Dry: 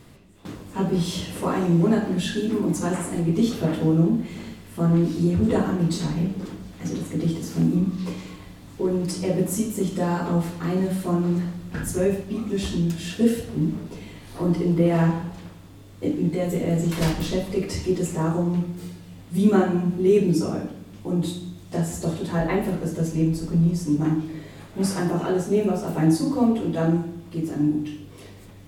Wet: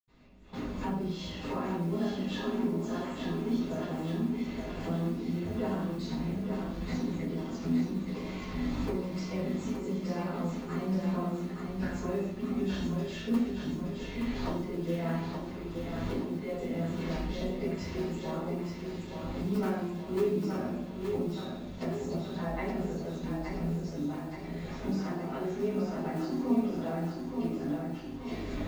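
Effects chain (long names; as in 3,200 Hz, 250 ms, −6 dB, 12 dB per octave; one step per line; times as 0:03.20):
camcorder AGC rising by 27 dB per second
elliptic low-pass filter 6,900 Hz
parametric band 120 Hz −7.5 dB 1.1 octaves
mains-hum notches 60/120/180/240/300/360/420 Hz
noise that follows the level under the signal 22 dB
in parallel at −4.5 dB: wrap-around overflow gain 11.5 dB
on the sum: feedback echo with a high-pass in the loop 873 ms, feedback 58%, high-pass 160 Hz, level −5 dB
convolution reverb RT60 0.40 s, pre-delay 76 ms
level −8.5 dB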